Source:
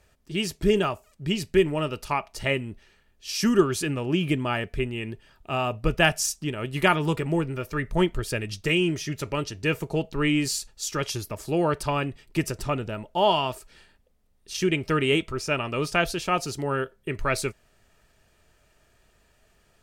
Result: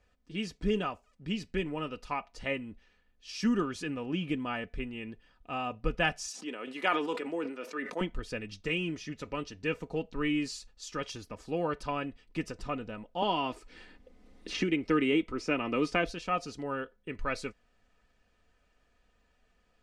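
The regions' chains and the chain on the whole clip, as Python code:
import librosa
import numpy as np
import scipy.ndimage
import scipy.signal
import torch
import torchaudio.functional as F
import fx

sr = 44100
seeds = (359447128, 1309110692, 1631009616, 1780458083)

y = fx.chain(x, sr, fx.highpass(hz=280.0, slope=24),
    fx.high_shelf(hz=8200.0, db=2.5),
    fx.sustainer(db_per_s=64.0), at=(6.28, 8.01))
y = fx.chain(y, sr, fx.small_body(hz=(320.0, 2100.0), ring_ms=25, db=9),
    fx.band_squash(depth_pct=70), at=(13.22, 16.09))
y = scipy.signal.sosfilt(scipy.signal.butter(2, 6400.0, 'lowpass', fs=sr, output='sos'), y)
y = fx.high_shelf(y, sr, hz=4800.0, db=-5.0)
y = y + 0.57 * np.pad(y, (int(4.0 * sr / 1000.0), 0))[:len(y)]
y = y * 10.0 ** (-8.5 / 20.0)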